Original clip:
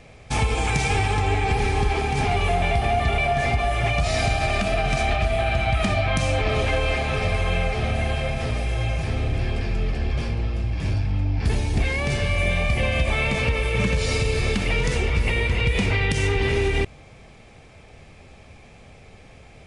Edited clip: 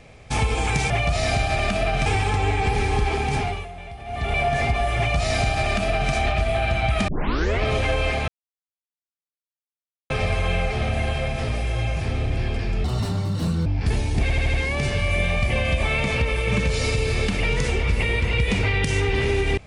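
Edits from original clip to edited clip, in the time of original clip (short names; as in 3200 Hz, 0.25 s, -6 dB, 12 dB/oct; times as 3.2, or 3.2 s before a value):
2.17–3.23 dip -16 dB, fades 0.34 s
3.81–4.97 copy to 0.9
5.92 tape start 0.54 s
7.12 insert silence 1.82 s
9.86–11.25 speed 170%
11.81 stutter 0.08 s, 5 plays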